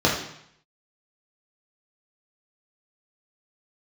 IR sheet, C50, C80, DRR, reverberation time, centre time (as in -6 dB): 4.5 dB, 8.0 dB, -4.5 dB, 0.70 s, 38 ms